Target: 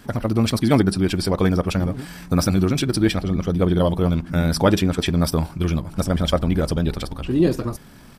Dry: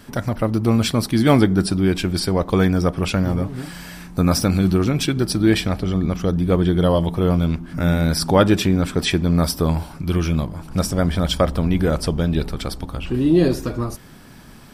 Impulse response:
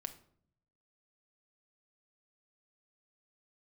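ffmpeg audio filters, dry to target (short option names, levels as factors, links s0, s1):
-af "atempo=1.8,volume=0.891"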